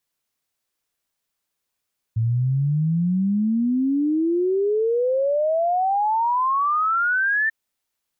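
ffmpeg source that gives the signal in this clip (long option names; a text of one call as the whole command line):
ffmpeg -f lavfi -i "aevalsrc='0.133*clip(min(t,5.34-t)/0.01,0,1)*sin(2*PI*110*5.34/log(1800/110)*(exp(log(1800/110)*t/5.34)-1))':duration=5.34:sample_rate=44100" out.wav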